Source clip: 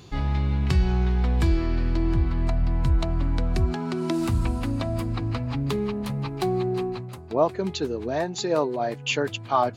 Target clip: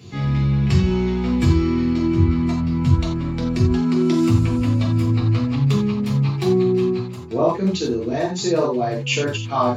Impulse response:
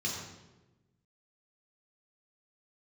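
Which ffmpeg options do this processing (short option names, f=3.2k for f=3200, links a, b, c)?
-filter_complex "[0:a]asettb=1/sr,asplit=3[a][b][c];[a]atrim=end=0.814[d];[b]atrim=start=0.81:end=2.91,asetpts=PTS-STARTPTS,afade=t=in:d=0.004:c=qsin,afade=t=out:st=2.096:d=0.004:c=qsin,asplit=2[e][f];[f]adelay=13,volume=-4dB[g];[e][g]amix=inputs=2:normalize=0,atrim=end_sample=92610[h];[c]atrim=start=2.906[i];[d][h]acrossfade=d=0.004:c1=hsin:c2=qsin[j];[j][i]acrossfade=d=0.004:c1=qsin:c2=hsin[k];[1:a]atrim=start_sample=2205,afade=t=out:st=0.15:d=0.01,atrim=end_sample=7056[l];[k][l]afir=irnorm=-1:irlink=0"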